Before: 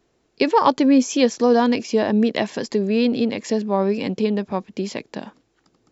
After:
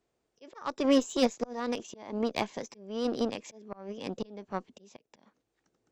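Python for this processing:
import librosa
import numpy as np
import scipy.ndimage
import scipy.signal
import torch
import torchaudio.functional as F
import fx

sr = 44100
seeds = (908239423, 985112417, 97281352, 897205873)

y = fx.auto_swell(x, sr, attack_ms=378.0)
y = fx.formant_shift(y, sr, semitones=3)
y = fx.cheby_harmonics(y, sr, harmonics=(2, 7), levels_db=(-18, -24), full_scale_db=-4.5)
y = y * librosa.db_to_amplitude(-8.5)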